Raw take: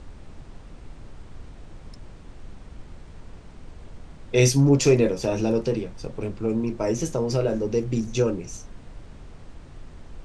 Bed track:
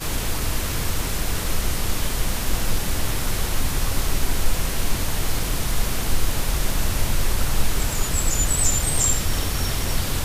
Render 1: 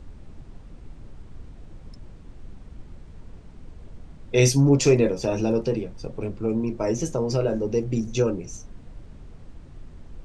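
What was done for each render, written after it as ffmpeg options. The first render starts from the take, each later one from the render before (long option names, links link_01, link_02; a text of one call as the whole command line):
ffmpeg -i in.wav -af "afftdn=noise_reduction=6:noise_floor=-45" out.wav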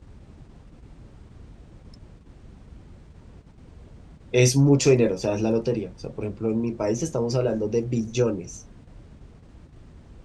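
ffmpeg -i in.wav -af "agate=range=-7dB:threshold=-42dB:ratio=16:detection=peak,highpass=44" out.wav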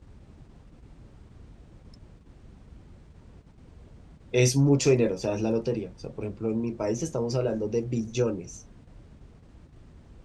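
ffmpeg -i in.wav -af "volume=-3.5dB" out.wav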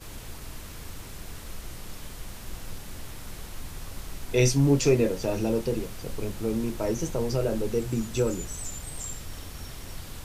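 ffmpeg -i in.wav -i bed.wav -filter_complex "[1:a]volume=-16.5dB[link_01];[0:a][link_01]amix=inputs=2:normalize=0" out.wav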